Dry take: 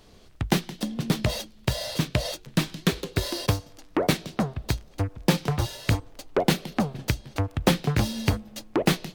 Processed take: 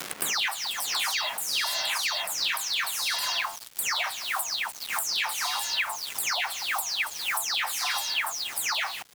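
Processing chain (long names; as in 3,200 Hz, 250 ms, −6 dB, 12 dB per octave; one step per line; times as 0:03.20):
every frequency bin delayed by itself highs early, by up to 298 ms
Butterworth high-pass 790 Hz 48 dB per octave
parametric band 8,300 Hz +2.5 dB 3 octaves
brickwall limiter −23.5 dBFS, peak gain reduction 7.5 dB
bit reduction 8 bits
surface crackle 600 per second −54 dBFS
multiband upward and downward compressor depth 100%
level +5 dB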